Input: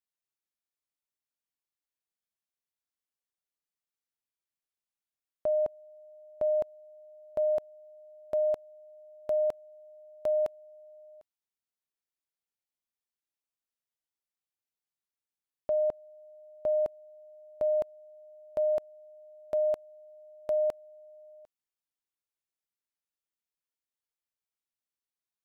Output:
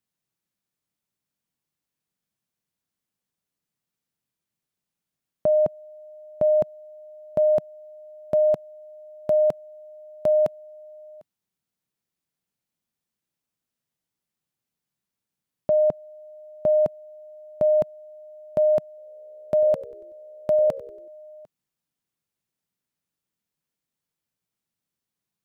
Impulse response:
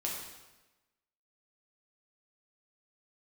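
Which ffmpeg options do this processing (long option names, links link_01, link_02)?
-filter_complex "[0:a]equalizer=frequency=160:width_type=o:width=1.7:gain=14.5,asettb=1/sr,asplit=3[link_01][link_02][link_03];[link_01]atrim=end=18.884[link_04];[link_02]atrim=start=18.88:end=21.08,asetpts=PTS-STARTPTS,afade=type=in:duration=0.004:curve=qsin,afade=type=out:start_time=2.196:duration=0.004:curve=qsin,asplit=5[link_05][link_06][link_07][link_08][link_09];[link_06]adelay=94,afreqshift=-67,volume=-17.5dB[link_10];[link_07]adelay=188,afreqshift=-134,volume=-24.6dB[link_11];[link_08]adelay=282,afreqshift=-201,volume=-31.8dB[link_12];[link_09]adelay=376,afreqshift=-268,volume=-38.9dB[link_13];[link_05][link_10][link_11][link_12][link_13]amix=inputs=5:normalize=0,atrim=end_sample=97020[link_14];[link_03]atrim=start=21.076[link_15];[link_04][link_14]acrossfade=duration=0.004:curve1=hsin:curve2=qsin[link_16];[link_16][link_15]acrossfade=duration=0.004:curve1=qsin:curve2=hsin,volume=6dB"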